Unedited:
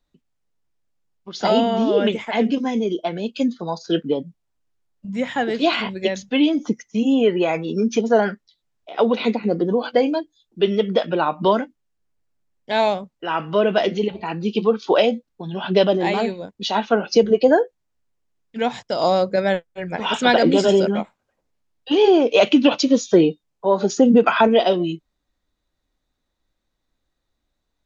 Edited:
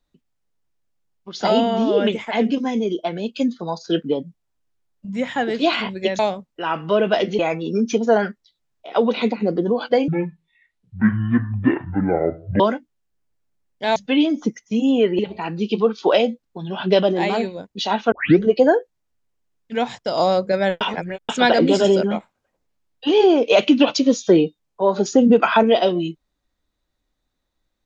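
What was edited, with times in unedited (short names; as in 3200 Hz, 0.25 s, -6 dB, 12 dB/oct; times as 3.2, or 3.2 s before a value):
6.19–7.42 swap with 12.83–14.03
10.11–11.47 speed 54%
16.96 tape start 0.30 s
19.65–20.13 reverse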